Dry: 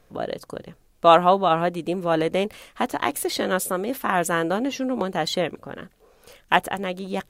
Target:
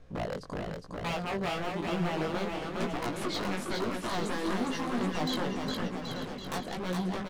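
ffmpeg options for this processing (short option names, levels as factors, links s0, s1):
-filter_complex "[0:a]lowpass=5700,lowshelf=f=290:g=10,acompressor=threshold=0.0631:ratio=5,aeval=exprs='0.0562*(abs(mod(val(0)/0.0562+3,4)-2)-1)':c=same,asplit=2[s0][s1];[s1]aecho=0:1:410|779|1111|1410|1679:0.631|0.398|0.251|0.158|0.1[s2];[s0][s2]amix=inputs=2:normalize=0,flanger=delay=16.5:depth=4.6:speed=1,asplit=2[s3][s4];[s4]aecho=0:1:888:0.251[s5];[s3][s5]amix=inputs=2:normalize=0"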